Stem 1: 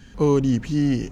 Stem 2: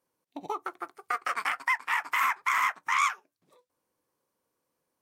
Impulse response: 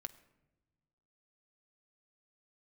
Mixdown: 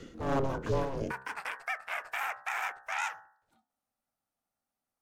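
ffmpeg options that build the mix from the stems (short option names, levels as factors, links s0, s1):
-filter_complex "[0:a]acrossover=split=330[s0][s1];[s1]acompressor=threshold=0.00158:ratio=1.5[s2];[s0][s2]amix=inputs=2:normalize=0,aeval=exprs='0.0891*(abs(mod(val(0)/0.0891+3,4)-2)-1)':c=same,tremolo=f=2.7:d=0.66,volume=1.33[s3];[1:a]highpass=260,volume=0.562[s4];[s3][s4]amix=inputs=2:normalize=0,aeval=exprs='val(0)*sin(2*PI*270*n/s)':c=same,bandreject=f=65.69:t=h:w=4,bandreject=f=131.38:t=h:w=4,bandreject=f=197.07:t=h:w=4,bandreject=f=262.76:t=h:w=4,bandreject=f=328.45:t=h:w=4,bandreject=f=394.14:t=h:w=4,bandreject=f=459.83:t=h:w=4,bandreject=f=525.52:t=h:w=4,bandreject=f=591.21:t=h:w=4,bandreject=f=656.9:t=h:w=4,bandreject=f=722.59:t=h:w=4,bandreject=f=788.28:t=h:w=4,bandreject=f=853.97:t=h:w=4,bandreject=f=919.66:t=h:w=4,bandreject=f=985.35:t=h:w=4,bandreject=f=1051.04:t=h:w=4,bandreject=f=1116.73:t=h:w=4,bandreject=f=1182.42:t=h:w=4,bandreject=f=1248.11:t=h:w=4,bandreject=f=1313.8:t=h:w=4,bandreject=f=1379.49:t=h:w=4,bandreject=f=1445.18:t=h:w=4,bandreject=f=1510.87:t=h:w=4,bandreject=f=1576.56:t=h:w=4,bandreject=f=1642.25:t=h:w=4,bandreject=f=1707.94:t=h:w=4,bandreject=f=1773.63:t=h:w=4,bandreject=f=1839.32:t=h:w=4,bandreject=f=1905.01:t=h:w=4"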